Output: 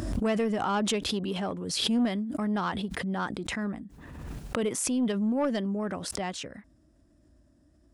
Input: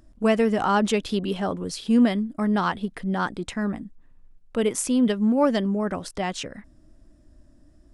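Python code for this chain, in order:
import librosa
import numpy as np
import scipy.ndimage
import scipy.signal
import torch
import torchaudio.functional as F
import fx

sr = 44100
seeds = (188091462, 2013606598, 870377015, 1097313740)

y = scipy.signal.sosfilt(scipy.signal.butter(4, 50.0, 'highpass', fs=sr, output='sos'), x)
y = 10.0 ** (-14.0 / 20.0) * np.tanh(y / 10.0 ** (-14.0 / 20.0))
y = fx.pre_swell(y, sr, db_per_s=36.0)
y = F.gain(torch.from_numpy(y), -5.5).numpy()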